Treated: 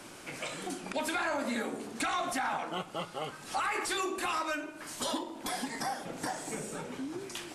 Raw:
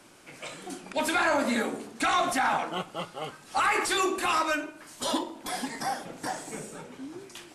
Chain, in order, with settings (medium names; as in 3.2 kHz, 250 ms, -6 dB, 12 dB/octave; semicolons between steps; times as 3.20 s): compression 2.5:1, threshold -43 dBFS, peak gain reduction 14 dB; trim +6 dB